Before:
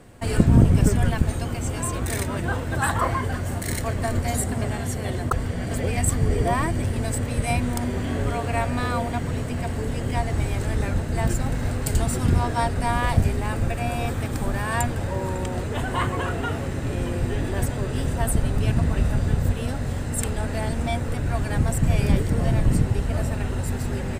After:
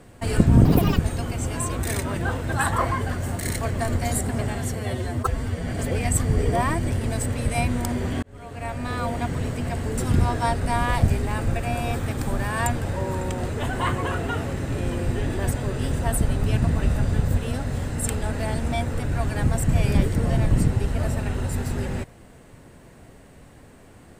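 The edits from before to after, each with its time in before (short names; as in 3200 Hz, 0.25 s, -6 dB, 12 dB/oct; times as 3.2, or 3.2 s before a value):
0.65–1.21 speed 169%
4.98–5.59 stretch 1.5×
8.15–9.15 fade in
9.9–12.12 cut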